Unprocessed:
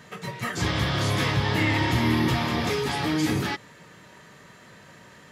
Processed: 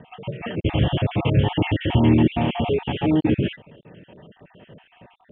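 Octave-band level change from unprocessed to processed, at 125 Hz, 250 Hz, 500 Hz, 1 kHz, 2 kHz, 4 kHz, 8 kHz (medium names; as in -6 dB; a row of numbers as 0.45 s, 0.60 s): +5.0 dB, +5.5 dB, +5.0 dB, -1.0 dB, -5.5 dB, -2.5 dB, under -40 dB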